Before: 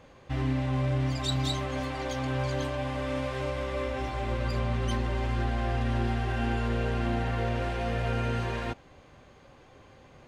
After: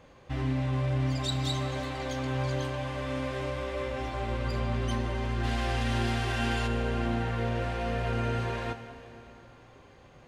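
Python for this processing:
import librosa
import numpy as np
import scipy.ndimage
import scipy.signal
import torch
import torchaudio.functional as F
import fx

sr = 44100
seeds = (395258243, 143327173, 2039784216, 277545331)

y = fx.high_shelf(x, sr, hz=2200.0, db=12.0, at=(5.43, 6.66), fade=0.02)
y = fx.rev_plate(y, sr, seeds[0], rt60_s=3.3, hf_ratio=0.9, predelay_ms=0, drr_db=8.5)
y = y * 10.0 ** (-1.5 / 20.0)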